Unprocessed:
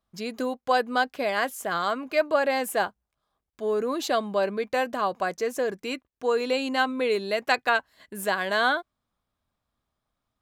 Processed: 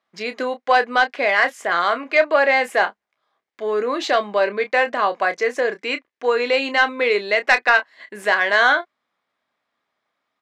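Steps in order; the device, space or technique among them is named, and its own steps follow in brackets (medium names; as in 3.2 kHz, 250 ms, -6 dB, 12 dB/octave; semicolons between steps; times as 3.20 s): intercom (band-pass 350–5000 Hz; peaking EQ 2 kHz +9 dB 0.54 oct; saturation -10 dBFS, distortion -21 dB; doubling 29 ms -10.5 dB); trim +6.5 dB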